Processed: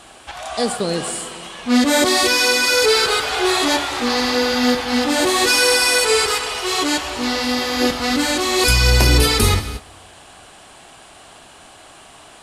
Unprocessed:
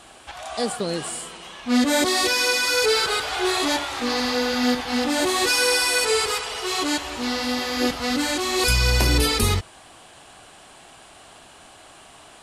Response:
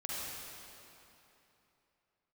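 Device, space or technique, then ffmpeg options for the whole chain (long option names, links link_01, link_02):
keyed gated reverb: -filter_complex "[0:a]asplit=3[link_01][link_02][link_03];[1:a]atrim=start_sample=2205[link_04];[link_02][link_04]afir=irnorm=-1:irlink=0[link_05];[link_03]apad=whole_len=547924[link_06];[link_05][link_06]sidechaingate=range=-18dB:threshold=-42dB:ratio=16:detection=peak,volume=-12dB[link_07];[link_01][link_07]amix=inputs=2:normalize=0,volume=3.5dB"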